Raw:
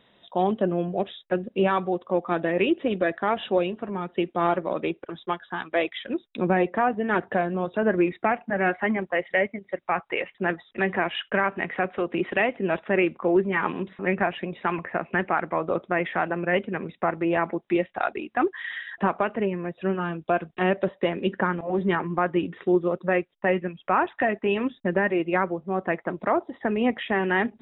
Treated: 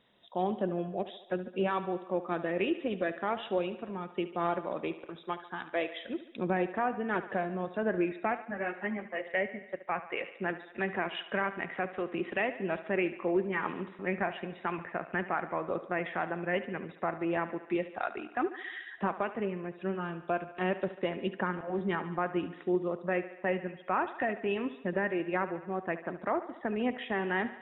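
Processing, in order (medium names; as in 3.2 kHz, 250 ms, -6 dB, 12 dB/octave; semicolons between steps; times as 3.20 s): thinning echo 72 ms, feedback 64%, high-pass 230 Hz, level -13.5 dB; 8.45–9.25 s: three-phase chorus; trim -8 dB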